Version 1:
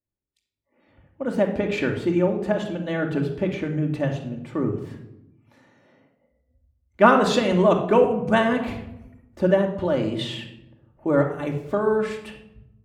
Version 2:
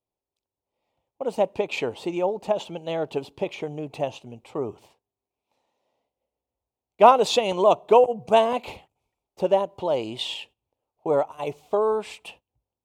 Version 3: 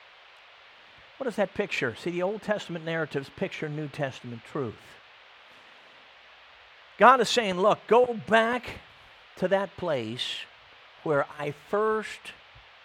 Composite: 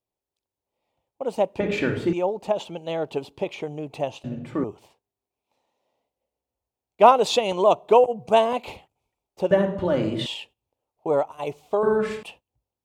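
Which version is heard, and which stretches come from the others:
2
1.6–2.13 from 1
4.24–4.64 from 1
9.51–10.26 from 1
11.83–12.23 from 1
not used: 3

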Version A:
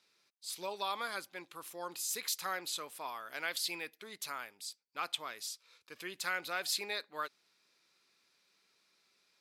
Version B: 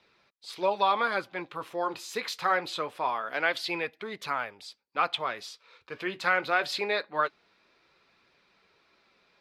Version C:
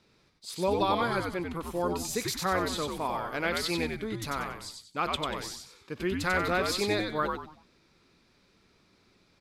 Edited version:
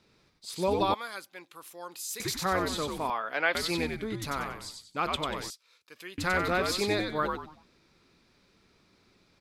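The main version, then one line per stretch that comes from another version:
C
0.94–2.2 from A
3.1–3.55 from B
5.5–6.18 from A

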